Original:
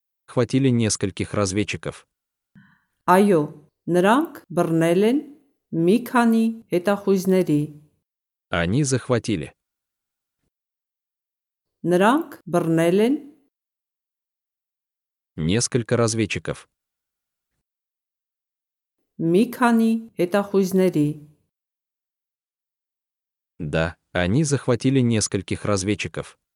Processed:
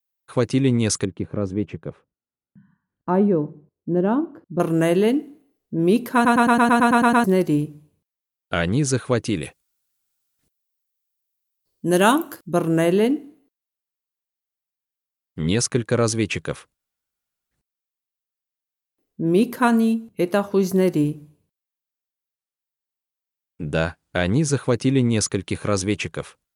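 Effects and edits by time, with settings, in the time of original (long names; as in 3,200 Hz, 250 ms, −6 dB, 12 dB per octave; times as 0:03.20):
0:01.05–0:04.60: resonant band-pass 200 Hz, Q 0.58
0:06.14: stutter in place 0.11 s, 10 plays
0:09.36–0:12.51: high-shelf EQ 3,200 Hz +10.5 dB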